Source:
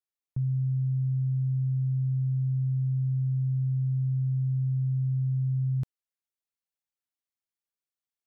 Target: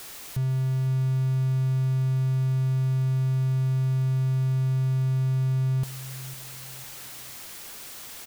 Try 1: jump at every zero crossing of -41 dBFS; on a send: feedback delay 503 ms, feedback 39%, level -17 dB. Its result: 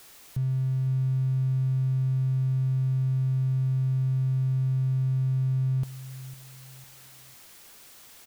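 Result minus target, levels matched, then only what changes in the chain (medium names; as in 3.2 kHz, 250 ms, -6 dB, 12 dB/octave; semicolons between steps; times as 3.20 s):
jump at every zero crossing: distortion -8 dB
change: jump at every zero crossing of -31.5 dBFS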